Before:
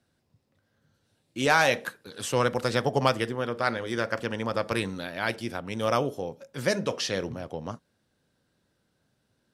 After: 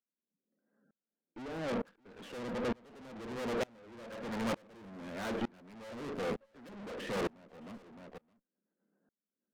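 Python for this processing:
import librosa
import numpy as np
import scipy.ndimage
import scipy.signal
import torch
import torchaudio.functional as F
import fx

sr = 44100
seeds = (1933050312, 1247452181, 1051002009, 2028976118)

y = fx.env_lowpass_down(x, sr, base_hz=390.0, full_db=-20.0)
y = scipy.signal.sosfilt(scipy.signal.butter(2, 2000.0, 'lowpass', fs=sr, output='sos'), y)
y = fx.spec_gate(y, sr, threshold_db=-25, keep='strong')
y = scipy.signal.sosfilt(scipy.signal.ellip(4, 1.0, 40, 190.0, 'highpass', fs=sr, output='sos'), y)
y = fx.low_shelf(y, sr, hz=320.0, db=8.0)
y = fx.leveller(y, sr, passes=3)
y = fx.rotary_switch(y, sr, hz=0.85, then_hz=8.0, switch_at_s=6.75)
y = fx.tube_stage(y, sr, drive_db=37.0, bias=0.4)
y = y + 10.0 ** (-14.5 / 20.0) * np.pad(y, (int(615 * sr / 1000.0), 0))[:len(y)]
y = fx.tremolo_decay(y, sr, direction='swelling', hz=1.1, depth_db=31)
y = y * librosa.db_to_amplitude(7.0)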